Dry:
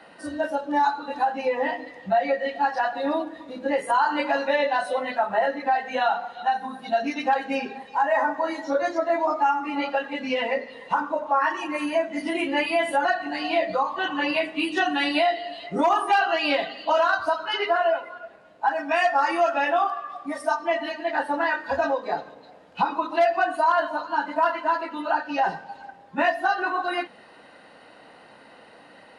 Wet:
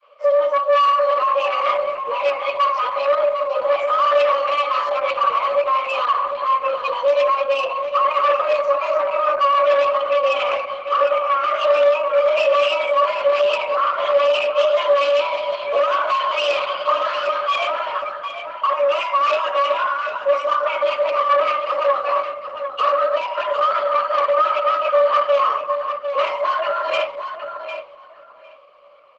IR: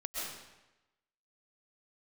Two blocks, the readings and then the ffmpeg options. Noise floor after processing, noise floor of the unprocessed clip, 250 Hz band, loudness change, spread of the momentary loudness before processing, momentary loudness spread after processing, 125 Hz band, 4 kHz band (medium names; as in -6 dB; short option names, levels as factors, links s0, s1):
-42 dBFS, -50 dBFS, under -15 dB, +6.0 dB, 8 LU, 6 LU, no reading, +5.5 dB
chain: -filter_complex "[0:a]agate=range=0.0224:threshold=0.0112:ratio=3:detection=peak,adynamicequalizer=threshold=0.0141:dfrequency=330:dqfactor=1.5:tfrequency=330:tqfactor=1.5:attack=5:release=100:ratio=0.375:range=2:mode=cutabove:tftype=bell,acrossover=split=180[s0][s1];[s0]acompressor=threshold=0.001:ratio=5[s2];[s2][s1]amix=inputs=2:normalize=0,apsyclip=20,asplit=3[s3][s4][s5];[s3]bandpass=f=300:t=q:w=8,volume=1[s6];[s4]bandpass=f=870:t=q:w=8,volume=0.501[s7];[s5]bandpass=f=2240:t=q:w=8,volume=0.355[s8];[s6][s7][s8]amix=inputs=3:normalize=0,asoftclip=type=tanh:threshold=0.251,afreqshift=280,asplit=2[s9][s10];[s10]adelay=753,lowpass=f=4400:p=1,volume=0.398,asplit=2[s11][s12];[s12]adelay=753,lowpass=f=4400:p=1,volume=0.18,asplit=2[s13][s14];[s14]adelay=753,lowpass=f=4400:p=1,volume=0.18[s15];[s9][s11][s13][s15]amix=inputs=4:normalize=0" -ar 48000 -c:a libopus -b:a 12k